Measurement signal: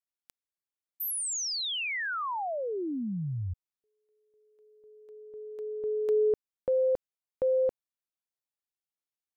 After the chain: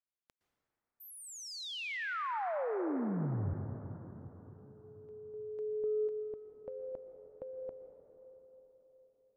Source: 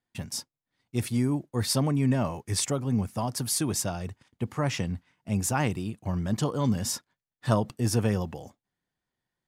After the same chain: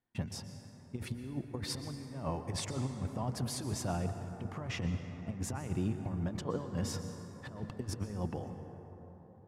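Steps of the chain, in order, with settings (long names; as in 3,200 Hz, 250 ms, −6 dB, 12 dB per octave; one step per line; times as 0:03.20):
low-pass filter 1,600 Hz 6 dB per octave
compressor whose output falls as the input rises −31 dBFS, ratio −0.5
dense smooth reverb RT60 4.2 s, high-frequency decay 0.35×, pre-delay 105 ms, DRR 7 dB
level −5 dB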